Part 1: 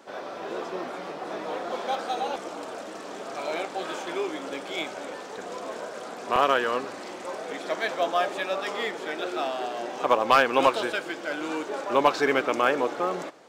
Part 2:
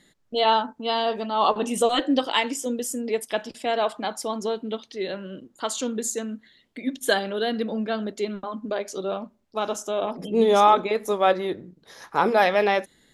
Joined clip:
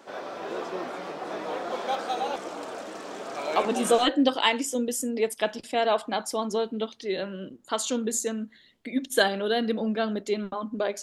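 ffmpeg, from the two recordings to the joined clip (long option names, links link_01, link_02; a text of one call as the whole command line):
ffmpeg -i cue0.wav -i cue1.wav -filter_complex "[0:a]apad=whole_dur=11.02,atrim=end=11.02,atrim=end=4.06,asetpts=PTS-STARTPTS[link_01];[1:a]atrim=start=1.47:end=8.93,asetpts=PTS-STARTPTS[link_02];[link_01][link_02]acrossfade=duration=0.5:curve1=log:curve2=log" out.wav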